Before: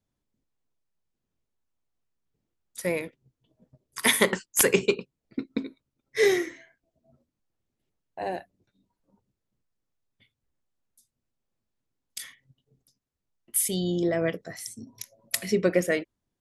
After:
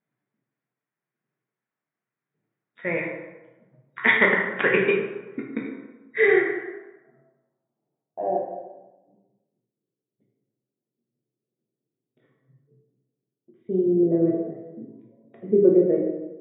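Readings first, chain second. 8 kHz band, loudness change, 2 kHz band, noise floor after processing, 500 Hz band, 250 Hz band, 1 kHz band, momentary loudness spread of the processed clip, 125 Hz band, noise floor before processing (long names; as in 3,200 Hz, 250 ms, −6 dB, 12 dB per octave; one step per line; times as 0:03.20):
below −40 dB, +4.5 dB, +7.0 dB, below −85 dBFS, +5.0 dB, +6.0 dB, +4.5 dB, 18 LU, +1.5 dB, −84 dBFS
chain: low-pass filter sweep 1,900 Hz → 400 Hz, 0:06.18–0:09.05
brick-wall band-pass 110–3,800 Hz
dense smooth reverb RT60 1.1 s, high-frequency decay 0.6×, DRR −1.5 dB
level −2 dB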